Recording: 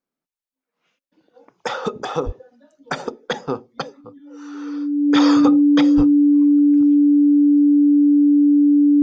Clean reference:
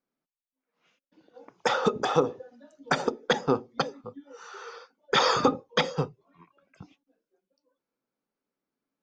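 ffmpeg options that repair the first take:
-filter_complex "[0:a]bandreject=f=290:w=30,asplit=3[s0][s1][s2];[s0]afade=t=out:st=2.25:d=0.02[s3];[s1]highpass=f=140:w=0.5412,highpass=f=140:w=1.3066,afade=t=in:st=2.25:d=0.02,afade=t=out:st=2.37:d=0.02[s4];[s2]afade=t=in:st=2.37:d=0.02[s5];[s3][s4][s5]amix=inputs=3:normalize=0,asplit=3[s6][s7][s8];[s6]afade=t=out:st=5.96:d=0.02[s9];[s7]highpass=f=140:w=0.5412,highpass=f=140:w=1.3066,afade=t=in:st=5.96:d=0.02,afade=t=out:st=6.08:d=0.02[s10];[s8]afade=t=in:st=6.08:d=0.02[s11];[s9][s10][s11]amix=inputs=3:normalize=0"

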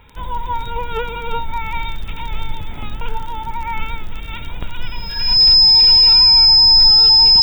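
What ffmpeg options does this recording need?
-af "adeclick=t=4,bandreject=f=5100:w=30"

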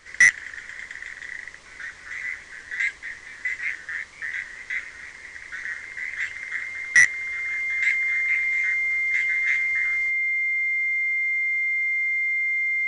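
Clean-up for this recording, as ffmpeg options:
-af "bandreject=f=2100:w=30"

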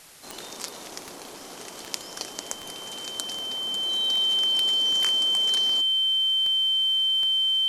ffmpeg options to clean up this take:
-af "adeclick=t=4,bandreject=f=3100:w=30,afwtdn=0.004"

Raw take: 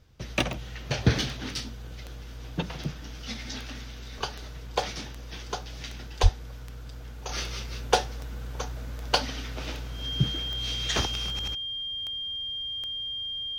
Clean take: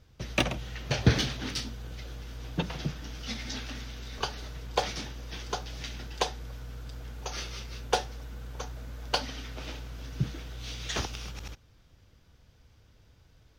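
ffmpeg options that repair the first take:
-filter_complex "[0:a]adeclick=t=4,bandreject=f=3200:w=30,asplit=3[s0][s1][s2];[s0]afade=t=out:st=6.22:d=0.02[s3];[s1]highpass=f=140:w=0.5412,highpass=f=140:w=1.3066,afade=t=in:st=6.22:d=0.02,afade=t=out:st=6.34:d=0.02[s4];[s2]afade=t=in:st=6.34:d=0.02[s5];[s3][s4][s5]amix=inputs=3:normalize=0,asetnsamples=n=441:p=0,asendcmd='7.29 volume volume -4.5dB',volume=1"

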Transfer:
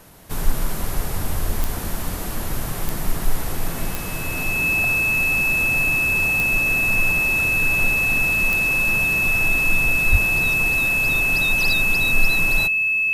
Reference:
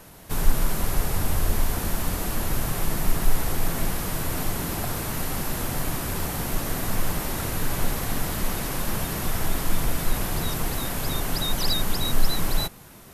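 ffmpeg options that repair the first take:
-filter_complex "[0:a]adeclick=t=4,bandreject=f=2600:w=30,asplit=3[s0][s1][s2];[s0]afade=t=out:st=10.11:d=0.02[s3];[s1]highpass=f=140:w=0.5412,highpass=f=140:w=1.3066,afade=t=in:st=10.11:d=0.02,afade=t=out:st=10.23:d=0.02[s4];[s2]afade=t=in:st=10.23:d=0.02[s5];[s3][s4][s5]amix=inputs=3:normalize=0"

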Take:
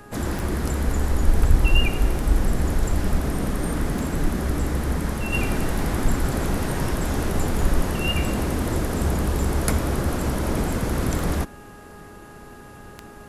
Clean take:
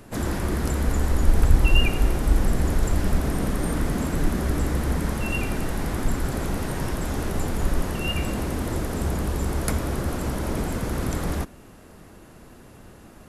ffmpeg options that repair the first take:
-af "adeclick=t=4,bandreject=f=413:t=h:w=4,bandreject=f=826:t=h:w=4,bandreject=f=1239:t=h:w=4,bandreject=f=1652:t=h:w=4,asetnsamples=n=441:p=0,asendcmd='5.33 volume volume -3dB',volume=1"

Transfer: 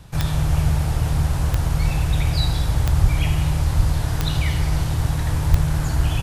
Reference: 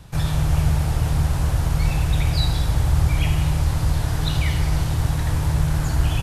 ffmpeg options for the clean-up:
-filter_complex "[0:a]adeclick=t=4,asplit=3[s0][s1][s2];[s0]afade=t=out:st=3.02:d=0.02[s3];[s1]highpass=f=140:w=0.5412,highpass=f=140:w=1.3066,afade=t=in:st=3.02:d=0.02,afade=t=out:st=3.14:d=0.02[s4];[s2]afade=t=in:st=3.14:d=0.02[s5];[s3][s4][s5]amix=inputs=3:normalize=0,asplit=3[s6][s7][s8];[s6]afade=t=out:st=3.76:d=0.02[s9];[s7]highpass=f=140:w=0.5412,highpass=f=140:w=1.3066,afade=t=in:st=3.76:d=0.02,afade=t=out:st=3.88:d=0.02[s10];[s8]afade=t=in:st=3.88:d=0.02[s11];[s9][s10][s11]amix=inputs=3:normalize=0,asplit=3[s12][s13][s14];[s12]afade=t=out:st=5.5:d=0.02[s15];[s13]highpass=f=140:w=0.5412,highpass=f=140:w=1.3066,afade=t=in:st=5.5:d=0.02,afade=t=out:st=5.62:d=0.02[s16];[s14]afade=t=in:st=5.62:d=0.02[s17];[s15][s16][s17]amix=inputs=3:normalize=0"

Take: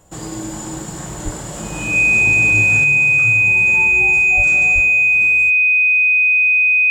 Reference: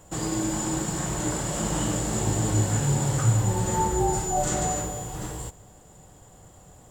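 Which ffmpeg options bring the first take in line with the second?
-filter_complex "[0:a]bandreject=f=2500:w=30,asplit=3[s0][s1][s2];[s0]afade=t=out:st=1.24:d=0.02[s3];[s1]highpass=f=140:w=0.5412,highpass=f=140:w=1.3066,afade=t=in:st=1.24:d=0.02,afade=t=out:st=1.36:d=0.02[s4];[s2]afade=t=in:st=1.36:d=0.02[s5];[s3][s4][s5]amix=inputs=3:normalize=0,asplit=3[s6][s7][s8];[s6]afade=t=out:st=4.36:d=0.02[s9];[s7]highpass=f=140:w=0.5412,highpass=f=140:w=1.3066,afade=t=in:st=4.36:d=0.02,afade=t=out:st=4.48:d=0.02[s10];[s8]afade=t=in:st=4.48:d=0.02[s11];[s9][s10][s11]amix=inputs=3:normalize=0,asplit=3[s12][s13][s14];[s12]afade=t=out:st=4.74:d=0.02[s15];[s13]highpass=f=140:w=0.5412,highpass=f=140:w=1.3066,afade=t=in:st=4.74:d=0.02,afade=t=out:st=4.86:d=0.02[s16];[s14]afade=t=in:st=4.86:d=0.02[s17];[s15][s16][s17]amix=inputs=3:normalize=0,asetnsamples=n=441:p=0,asendcmd='2.84 volume volume 5.5dB',volume=1"

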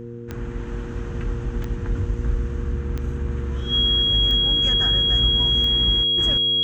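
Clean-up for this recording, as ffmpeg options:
-af "adeclick=t=4,bandreject=f=118.1:t=h:w=4,bandreject=f=236.2:t=h:w=4,bandreject=f=354.3:t=h:w=4,bandreject=f=472.4:t=h:w=4,bandreject=f=3300:w=30"

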